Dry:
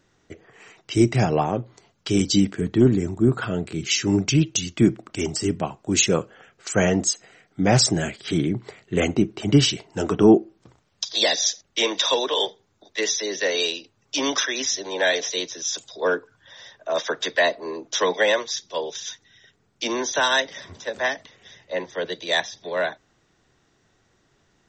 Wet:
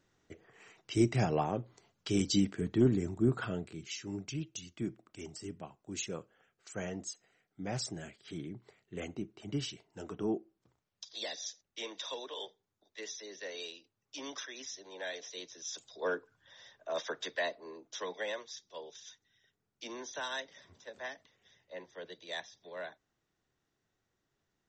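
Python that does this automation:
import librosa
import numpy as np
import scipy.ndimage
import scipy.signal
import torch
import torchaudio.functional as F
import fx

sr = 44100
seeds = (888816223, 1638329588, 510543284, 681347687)

y = fx.gain(x, sr, db=fx.line((3.49, -10.0), (3.92, -20.0), (15.2, -20.0), (15.98, -12.0), (16.99, -12.0), (17.98, -18.5)))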